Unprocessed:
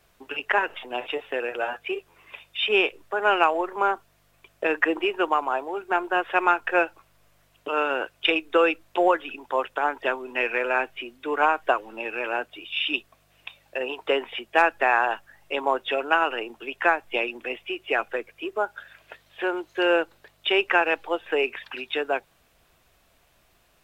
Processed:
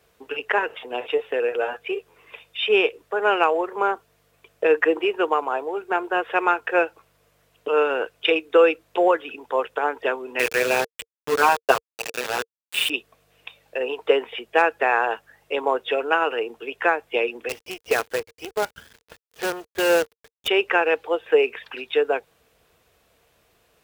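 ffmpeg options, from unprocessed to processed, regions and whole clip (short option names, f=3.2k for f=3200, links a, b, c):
-filter_complex "[0:a]asettb=1/sr,asplit=3[a][b][c];[a]atrim=end=10.394[d];[b]atrim=start=10.39:end=12.9,asetpts=PTS-STARTPTS,afade=t=in:d=0.004:c=qsin,afade=t=out:st=2.506:d=0.004:c=qsin,highshelf=f=3.9k:g=6,aecho=1:1:7.5:0.83,atrim=end_sample=110691,aeval=exprs='val(0)*gte(abs(val(0)),0.075)':c=same[e];[c]atrim=start=12.896[f];[d][e]acrossfade=d=0.004:c1=hsin:c2=qsin[g];[g][f]acrossfade=d=0.004:c1=qsin:c2=hsin,asettb=1/sr,asplit=3[h][i][j];[h]atrim=end=17.494[k];[i]atrim=start=17.49:end=20.48,asetpts=PTS-STARTPTS,afade=t=in:d=0.004:c=qsin,afade=t=out:st=2.986:d=0.004:c=qsin,equalizer=f=390:t=o:w=0.67:g=-2,acrusher=bits=5:dc=4:mix=0:aa=0.000001[l];[j]atrim=start=20.476[m];[k][l]acrossfade=d=0.004:c1=hsin:c2=qsin[n];[n][m]acrossfade=d=0.004:c1=qsin:c2=hsin,highpass=49,equalizer=f=460:t=o:w=0.25:g=11.5"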